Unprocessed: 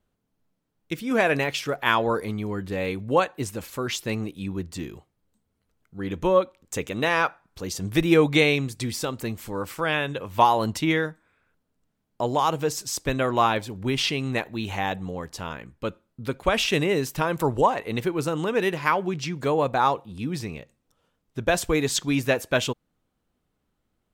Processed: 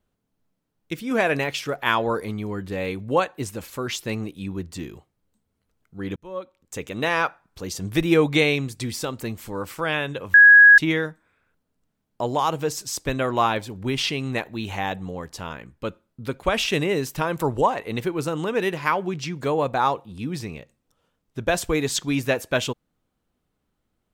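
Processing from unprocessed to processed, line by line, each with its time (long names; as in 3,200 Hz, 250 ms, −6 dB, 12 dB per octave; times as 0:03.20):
0:06.16–0:07.07: fade in
0:10.34–0:10.78: beep over 1,660 Hz −6.5 dBFS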